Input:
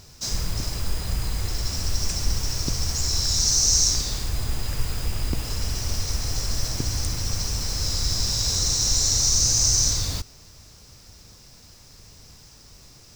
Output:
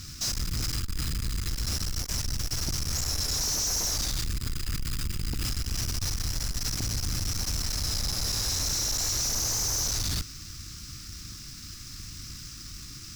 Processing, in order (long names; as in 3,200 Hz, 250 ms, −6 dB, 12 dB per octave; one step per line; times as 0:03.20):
elliptic band-stop filter 330–1,200 Hz
in parallel at −1 dB: compressor whose output falls as the input rises −30 dBFS
on the sum: tube saturation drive 26 dB, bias 0.4